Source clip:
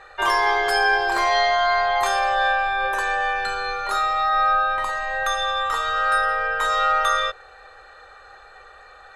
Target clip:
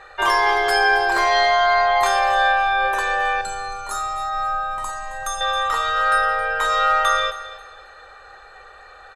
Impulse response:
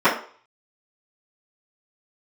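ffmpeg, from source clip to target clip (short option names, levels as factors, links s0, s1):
-filter_complex "[0:a]asettb=1/sr,asplit=3[s0][s1][s2];[s0]atrim=end=3.414[s3];[s1]atrim=start=3.41:end=5.41,asetpts=PTS-STARTPTS,afade=t=in:d=0.004:c=qsin,afade=t=out:st=1.996:d=0.004:c=qsin,equalizer=f=500:t=o:w=1:g=-11,equalizer=f=2000:t=o:w=1:g=-12,equalizer=f=4000:t=o:w=1:g=-8,equalizer=f=8000:t=o:w=1:g=10[s4];[s2]atrim=start=5.406[s5];[s3][s4]acrossfade=d=0.004:c1=hsin:c2=qsin[s6];[s6][s5]acrossfade=d=0.004:c1=qsin:c2=hsin,asplit=2[s7][s8];[s8]aecho=0:1:269|538|807:0.178|0.0516|0.015[s9];[s7][s9]amix=inputs=2:normalize=0,volume=1.26"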